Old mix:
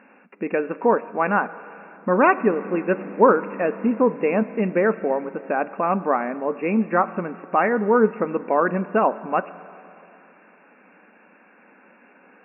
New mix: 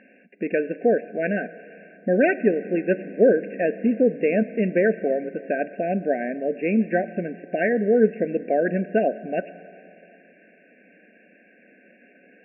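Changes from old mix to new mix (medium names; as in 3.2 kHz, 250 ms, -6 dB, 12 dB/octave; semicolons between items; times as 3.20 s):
background -3.5 dB; master: add brick-wall FIR band-stop 740–1500 Hz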